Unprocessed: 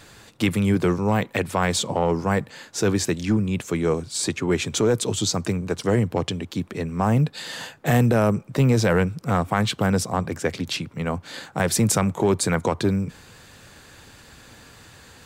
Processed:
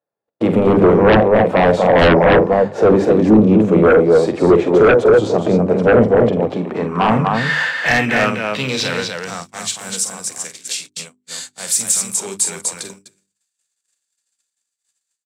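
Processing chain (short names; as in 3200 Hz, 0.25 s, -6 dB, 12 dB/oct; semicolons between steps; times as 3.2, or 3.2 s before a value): in parallel at +1 dB: limiter -15.5 dBFS, peak gain reduction 8.5 dB; on the sum: harmonic-percussive split percussive -11 dB; band-pass sweep 600 Hz -> 7900 Hz, 6.21–9.81; HPF 130 Hz 12 dB/oct; on a send: loudspeakers at several distances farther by 16 m -9 dB, 85 m -5 dB; on the sum: harmoniser +3 st -13 dB; gate -48 dBFS, range -51 dB; sine folder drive 15 dB, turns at -8 dBFS; low shelf 440 Hz +7.5 dB; notches 50/100/150/200/250/300/350/400 Hz; gain -1 dB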